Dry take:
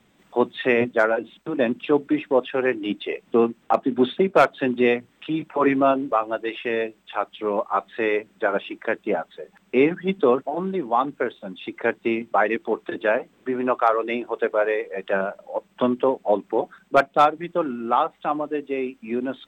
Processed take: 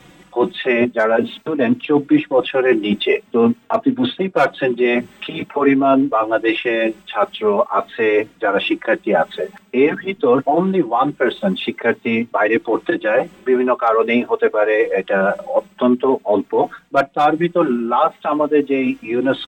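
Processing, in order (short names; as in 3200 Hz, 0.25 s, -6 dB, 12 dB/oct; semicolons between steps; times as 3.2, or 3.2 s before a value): reverse; compressor 6:1, threshold -29 dBFS, peak gain reduction 17 dB; reverse; maximiser +19.5 dB; endless flanger 3.7 ms +0.47 Hz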